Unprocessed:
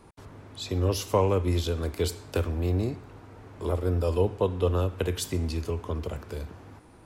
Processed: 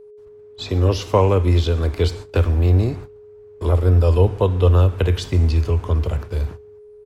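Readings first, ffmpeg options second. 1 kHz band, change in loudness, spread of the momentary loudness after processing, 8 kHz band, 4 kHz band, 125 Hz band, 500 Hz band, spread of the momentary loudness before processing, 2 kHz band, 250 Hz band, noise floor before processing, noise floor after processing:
+7.0 dB, +10.0 dB, 10 LU, can't be measured, +6.0 dB, +12.5 dB, +6.5 dB, 17 LU, +7.0 dB, +6.5 dB, −52 dBFS, −43 dBFS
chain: -filter_complex "[0:a]acrossover=split=5400[link_01][link_02];[link_02]acompressor=threshold=-58dB:ratio=4:attack=1:release=60[link_03];[link_01][link_03]amix=inputs=2:normalize=0,agate=range=-23dB:threshold=-41dB:ratio=16:detection=peak,asubboost=boost=3:cutoff=120,aeval=exprs='val(0)+0.00398*sin(2*PI*420*n/s)':channel_layout=same,asplit=2[link_04][link_05];[link_05]adelay=139.9,volume=-29dB,highshelf=frequency=4000:gain=-3.15[link_06];[link_04][link_06]amix=inputs=2:normalize=0,volume=7.5dB"

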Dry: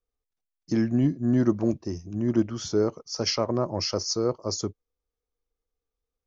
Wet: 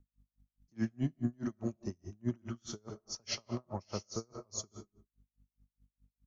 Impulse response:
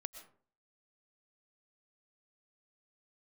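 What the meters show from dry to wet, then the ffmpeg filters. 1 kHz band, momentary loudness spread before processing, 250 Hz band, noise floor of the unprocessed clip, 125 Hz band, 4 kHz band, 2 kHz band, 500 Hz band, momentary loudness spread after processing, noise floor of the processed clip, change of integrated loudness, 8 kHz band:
−13.0 dB, 7 LU, −13.5 dB, below −85 dBFS, −11.0 dB, −13.5 dB, −9.5 dB, −18.0 dB, 10 LU, below −85 dBFS, −13.5 dB, can't be measured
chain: -filter_complex "[0:a]equalizer=frequency=315:width_type=o:width=0.33:gain=-9,equalizer=frequency=500:width_type=o:width=0.33:gain=-7,equalizer=frequency=5000:width_type=o:width=0.33:gain=-12,acrossover=split=3300[link_01][link_02];[link_01]alimiter=limit=-19.5dB:level=0:latency=1:release=104[link_03];[link_03][link_02]amix=inputs=2:normalize=0[link_04];[1:a]atrim=start_sample=2205,afade=type=out:start_time=0.4:duration=0.01,atrim=end_sample=18081[link_05];[link_04][link_05]afir=irnorm=-1:irlink=0,aeval=exprs='val(0)+0.000631*(sin(2*PI*50*n/s)+sin(2*PI*2*50*n/s)/2+sin(2*PI*3*50*n/s)/3+sin(2*PI*4*50*n/s)/4+sin(2*PI*5*50*n/s)/5)':channel_layout=same,aecho=1:1:77|154|231:0.224|0.0649|0.0188,acrossover=split=300|3000[link_06][link_07][link_08];[link_07]acompressor=threshold=-35dB:ratio=6[link_09];[link_06][link_09][link_08]amix=inputs=3:normalize=0,equalizer=frequency=5200:width=1.4:gain=4,aeval=exprs='val(0)*pow(10,-38*(0.5-0.5*cos(2*PI*4.8*n/s))/20)':channel_layout=same,volume=1.5dB"

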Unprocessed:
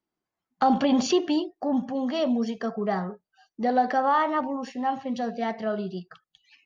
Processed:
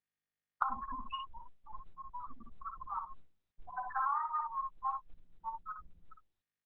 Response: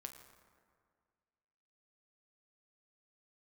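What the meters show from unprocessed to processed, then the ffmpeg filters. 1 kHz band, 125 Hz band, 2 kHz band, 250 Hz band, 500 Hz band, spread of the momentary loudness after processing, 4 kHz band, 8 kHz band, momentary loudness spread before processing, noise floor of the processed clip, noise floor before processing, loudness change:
−11.0 dB, below −20 dB, −14.0 dB, −36.0 dB, below −35 dB, 16 LU, below −15 dB, can't be measured, 8 LU, below −85 dBFS, below −85 dBFS, −14.0 dB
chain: -filter_complex "[0:a]agate=range=-48dB:threshold=-52dB:ratio=16:detection=peak,acrossover=split=210[link_01][link_02];[link_01]aeval=exprs='abs(val(0))':channel_layout=same[link_03];[link_03][link_02]amix=inputs=2:normalize=0,acompressor=mode=upward:threshold=-31dB:ratio=2.5,flanger=delay=9:depth=2.3:regen=-90:speed=0.72:shape=triangular,firequalizer=gain_entry='entry(100,0);entry(190,-7);entry(300,-27);entry(460,-23);entry(680,-26);entry(1000,8);entry(1700,-6);entry(2500,-3);entry(5600,-22);entry(8900,-15)':delay=0.05:min_phase=1,afftfilt=real='re*gte(hypot(re,im),0.0562)':imag='im*gte(hypot(re,im),0.0562)':win_size=1024:overlap=0.75,aecho=1:1:59|71:0.501|0.2,acompressor=threshold=-33dB:ratio=12,volume=2.5dB" -ar 48000 -c:a libopus -b:a 6k

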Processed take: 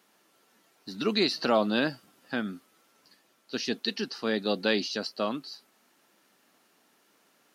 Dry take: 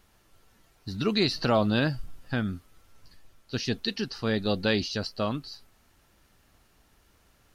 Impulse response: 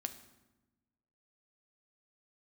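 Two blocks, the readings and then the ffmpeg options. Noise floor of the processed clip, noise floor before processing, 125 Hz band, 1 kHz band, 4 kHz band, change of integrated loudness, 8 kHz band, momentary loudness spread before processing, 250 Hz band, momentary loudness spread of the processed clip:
−67 dBFS, −64 dBFS, −11.5 dB, 0.0 dB, 0.0 dB, −1.0 dB, can't be measured, 16 LU, −2.0 dB, 17 LU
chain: -af "highpass=frequency=210:width=0.5412,highpass=frequency=210:width=1.3066"

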